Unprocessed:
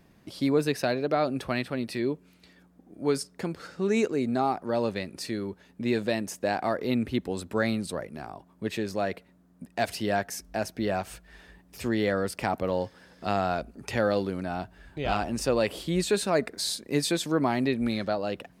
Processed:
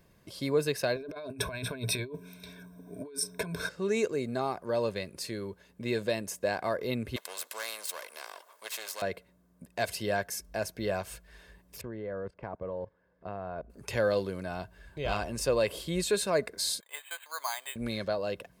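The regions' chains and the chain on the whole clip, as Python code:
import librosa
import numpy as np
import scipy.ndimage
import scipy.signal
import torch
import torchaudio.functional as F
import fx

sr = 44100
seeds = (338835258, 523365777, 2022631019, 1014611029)

y = fx.chain(x, sr, fx.ripple_eq(per_octave=1.6, db=16),
    fx.over_compress(threshold_db=-34.0, ratio=-1.0), at=(0.96, 3.69))
y = fx.chain(y, sr, fx.halfwave_gain(db=-7.0),
    fx.highpass(hz=630.0, slope=24),
    fx.spectral_comp(ratio=2.0), at=(7.16, 9.02))
y = fx.chain(y, sr, fx.lowpass(hz=1300.0, slope=12),
    fx.level_steps(step_db=17), at=(11.81, 13.7))
y = fx.chain(y, sr, fx.ellip_bandpass(low_hz=790.0, high_hz=2800.0, order=3, stop_db=80),
    fx.resample_bad(factor=8, down='filtered', up='hold'), at=(16.8, 17.76))
y = fx.high_shelf(y, sr, hz=7500.0, db=6.5)
y = y + 0.46 * np.pad(y, (int(1.9 * sr / 1000.0), 0))[:len(y)]
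y = F.gain(torch.from_numpy(y), -4.0).numpy()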